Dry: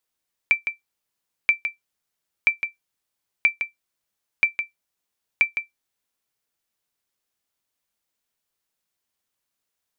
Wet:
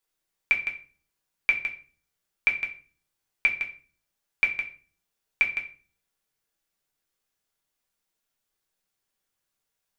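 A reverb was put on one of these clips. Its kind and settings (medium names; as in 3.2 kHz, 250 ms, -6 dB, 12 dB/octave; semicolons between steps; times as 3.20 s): simulated room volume 31 m³, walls mixed, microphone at 0.51 m; trim -3 dB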